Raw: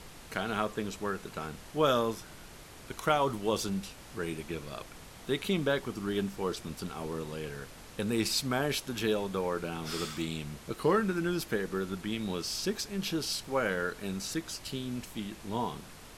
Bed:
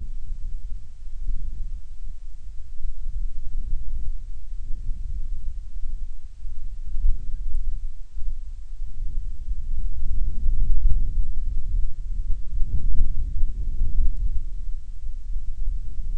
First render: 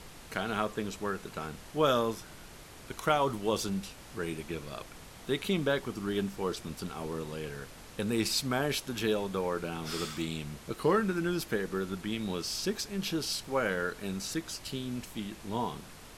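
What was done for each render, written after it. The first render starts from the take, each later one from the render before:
no processing that can be heard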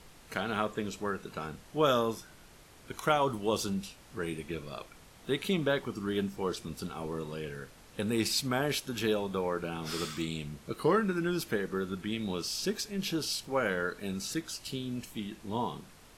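noise reduction from a noise print 6 dB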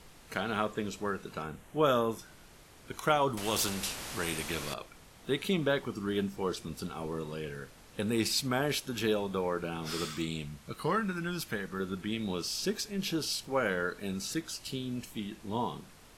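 0:01.42–0:02.19: parametric band 4,800 Hz −11.5 dB 0.64 octaves
0:03.37–0:04.74: every bin compressed towards the loudest bin 2 to 1
0:10.45–0:11.80: parametric band 370 Hz −8.5 dB 1.1 octaves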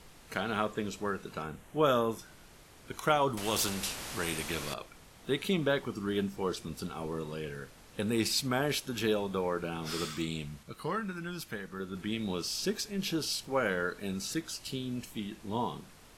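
0:10.63–0:11.95: clip gain −4 dB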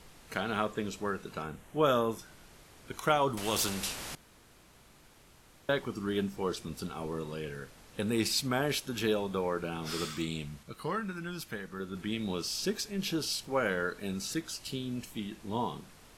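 0:04.15–0:05.69: fill with room tone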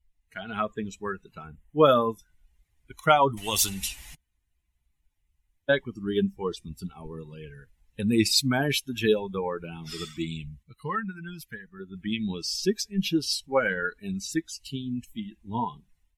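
spectral dynamics exaggerated over time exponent 2
automatic gain control gain up to 11 dB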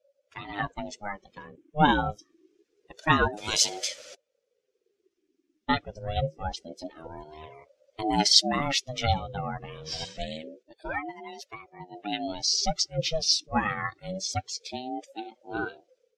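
low-pass with resonance 5,500 Hz, resonance Q 3
ring modulator whose carrier an LFO sweeps 430 Hz, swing 30%, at 0.26 Hz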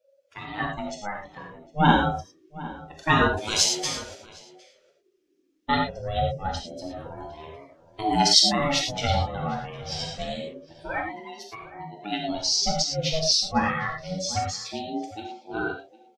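slap from a distant wall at 130 metres, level −17 dB
reverb whose tail is shaped and stops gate 130 ms flat, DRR 0 dB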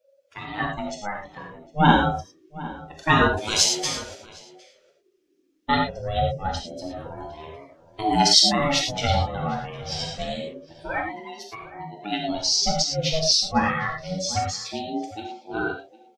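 level +2 dB
brickwall limiter −1 dBFS, peak gain reduction 1.5 dB

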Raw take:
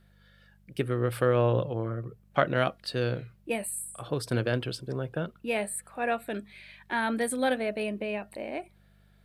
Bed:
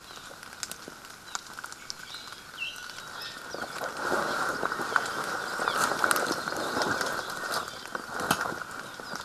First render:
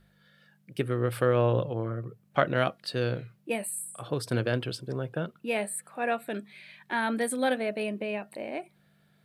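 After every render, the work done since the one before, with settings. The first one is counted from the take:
hum removal 50 Hz, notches 2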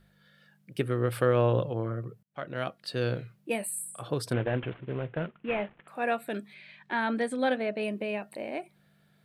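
0:02.23–0:03.09: fade in
0:04.33–0:05.88: variable-slope delta modulation 16 kbit/s
0:06.54–0:07.83: high-frequency loss of the air 92 metres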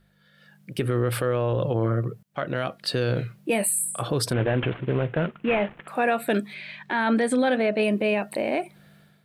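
automatic gain control gain up to 12 dB
brickwall limiter −14 dBFS, peak gain reduction 11.5 dB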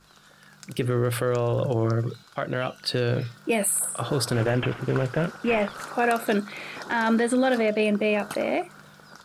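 mix in bed −11 dB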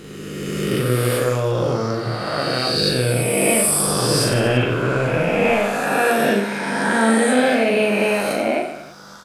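peak hold with a rise ahead of every peak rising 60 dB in 2.33 s
reverse bouncing-ball delay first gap 40 ms, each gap 1.25×, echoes 5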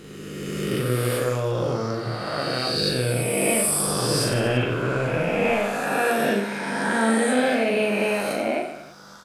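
level −4.5 dB

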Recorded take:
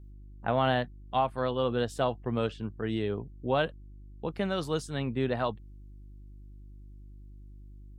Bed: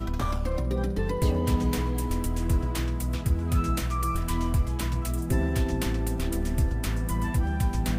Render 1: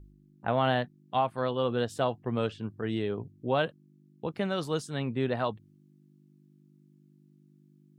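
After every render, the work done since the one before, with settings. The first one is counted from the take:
hum removal 50 Hz, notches 2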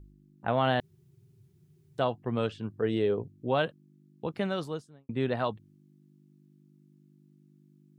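0:00.80–0:01.98: fill with room tone
0:02.80–0:03.24: parametric band 480 Hz +9 dB 0.62 octaves
0:04.44–0:05.09: fade out and dull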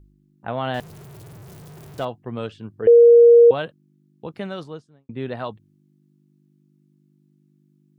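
0:00.74–0:02.05: converter with a step at zero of −36.5 dBFS
0:02.87–0:03.51: beep over 471 Hz −6.5 dBFS
0:04.63–0:05.26: high-frequency loss of the air 75 metres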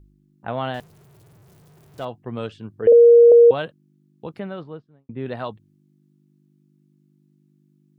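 0:00.63–0:02.16: duck −10 dB, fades 0.25 s
0:02.92–0:03.32: Butterworth low-pass 670 Hz 96 dB per octave
0:04.39–0:05.26: high-frequency loss of the air 380 metres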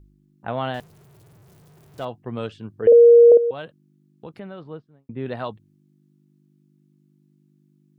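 0:03.37–0:04.66: downward compressor 1.5 to 1, threshold −42 dBFS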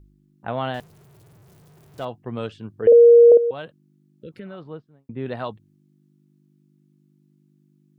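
0:04.20–0:04.53: healed spectral selection 590–1,300 Hz both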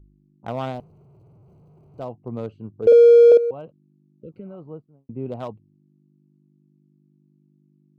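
adaptive Wiener filter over 25 samples
notch filter 1,700 Hz, Q 13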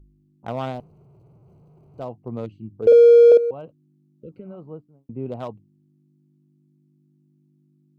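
0:02.46–0:02.72: gain on a spectral selection 370–1,800 Hz −19 dB
hum removal 99.28 Hz, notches 3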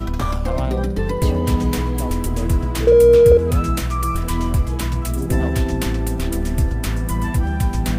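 mix in bed +6.5 dB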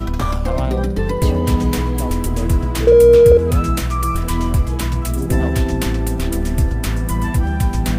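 level +2 dB
brickwall limiter −1 dBFS, peak gain reduction 1 dB

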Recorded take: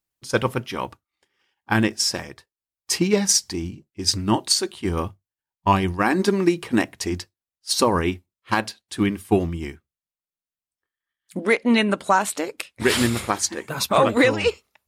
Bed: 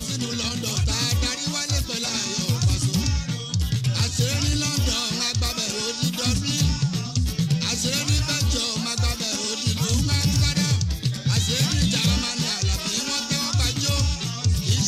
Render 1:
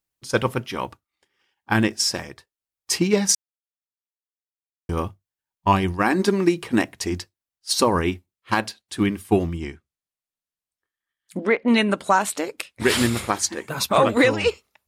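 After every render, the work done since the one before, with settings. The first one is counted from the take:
0:03.35–0:04.89: silence
0:09.56–0:11.68: treble cut that deepens with the level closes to 2,200 Hz, closed at −18.5 dBFS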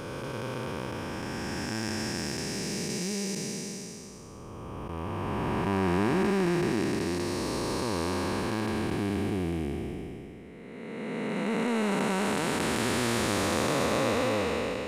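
spectrum smeared in time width 1,150 ms
in parallel at −10.5 dB: soft clipping −30 dBFS, distortion −9 dB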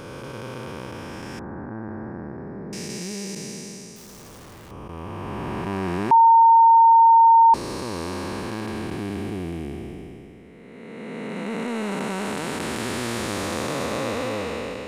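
0:01.39–0:02.73: inverse Chebyshev low-pass filter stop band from 2,800 Hz
0:03.96–0:04.71: sign of each sample alone
0:06.11–0:07.54: beep over 914 Hz −9.5 dBFS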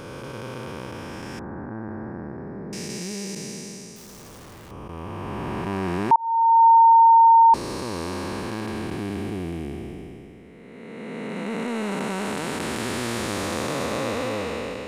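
0:06.16–0:06.66: fade in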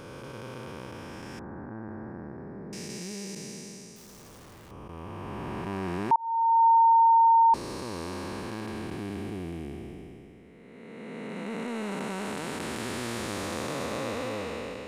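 level −6 dB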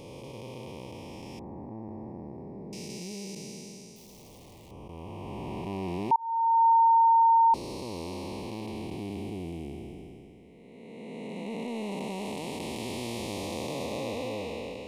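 dynamic equaliser 7,700 Hz, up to −4 dB, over −59 dBFS, Q 1.9
Chebyshev band-stop filter 900–2,400 Hz, order 2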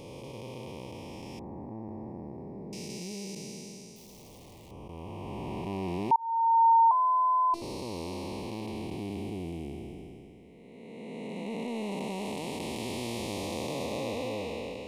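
0:06.91–0:07.62: phases set to zero 339 Hz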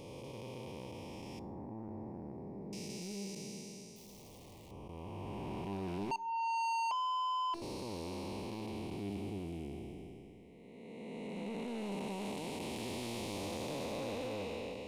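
soft clipping −29.5 dBFS, distortion −6 dB
tuned comb filter 100 Hz, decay 0.62 s, harmonics all, mix 40%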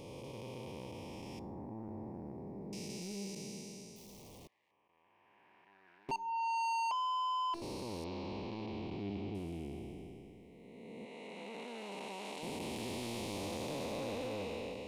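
0:04.47–0:06.09: resonant band-pass 1,700 Hz, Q 7.1
0:08.04–0:09.35: low-pass filter 4,700 Hz 24 dB per octave
0:11.05–0:12.43: meter weighting curve A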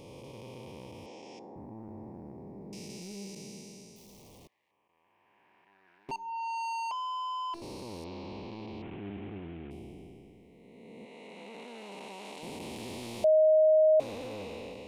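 0:01.06–0:01.56: loudspeaker in its box 290–7,500 Hz, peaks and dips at 470 Hz +5 dB, 740 Hz +4 dB, 1,200 Hz −5 dB, 6,300 Hz +4 dB
0:08.82–0:09.71: variable-slope delta modulation 16 kbit/s
0:13.24–0:14.00: beep over 625 Hz −18.5 dBFS

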